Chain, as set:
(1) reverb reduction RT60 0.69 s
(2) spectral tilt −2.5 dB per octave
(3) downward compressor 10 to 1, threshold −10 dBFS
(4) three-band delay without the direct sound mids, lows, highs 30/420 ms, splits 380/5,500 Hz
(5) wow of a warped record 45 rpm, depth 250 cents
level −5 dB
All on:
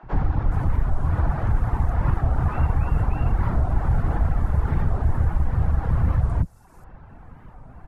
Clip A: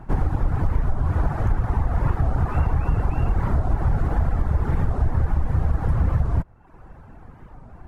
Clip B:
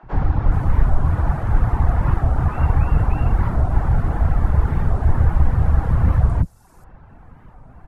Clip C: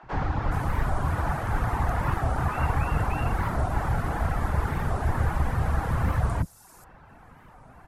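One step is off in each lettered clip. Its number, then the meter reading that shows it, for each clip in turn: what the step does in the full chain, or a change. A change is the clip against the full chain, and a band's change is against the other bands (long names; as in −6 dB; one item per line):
4, 500 Hz band +1.5 dB
3, average gain reduction 3.5 dB
2, 125 Hz band −7.0 dB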